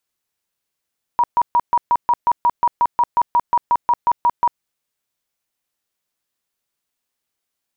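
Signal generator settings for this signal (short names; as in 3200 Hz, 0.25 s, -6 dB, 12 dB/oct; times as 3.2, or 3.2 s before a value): tone bursts 958 Hz, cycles 45, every 0.18 s, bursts 19, -11 dBFS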